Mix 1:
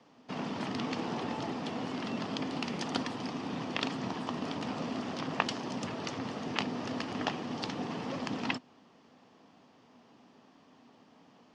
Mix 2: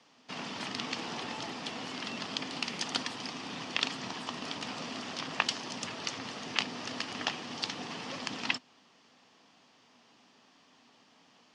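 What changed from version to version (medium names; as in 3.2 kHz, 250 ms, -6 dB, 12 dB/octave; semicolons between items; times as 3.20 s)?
master: add tilt shelf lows -7.5 dB, about 1.3 kHz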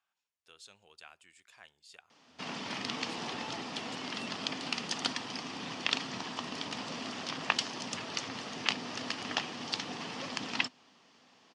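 background: entry +2.10 s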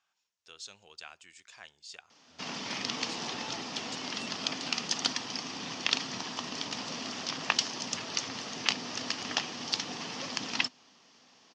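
speech +4.5 dB; master: add resonant low-pass 6.2 kHz, resonance Q 2.3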